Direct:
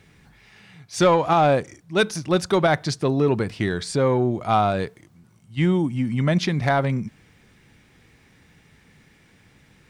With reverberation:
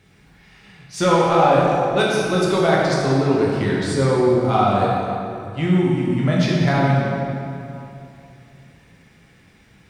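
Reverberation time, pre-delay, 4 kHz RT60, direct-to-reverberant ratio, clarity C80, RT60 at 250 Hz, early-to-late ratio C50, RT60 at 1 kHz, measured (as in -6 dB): 2.8 s, 11 ms, 1.8 s, -5.0 dB, 0.0 dB, 3.0 s, -2.0 dB, 2.7 s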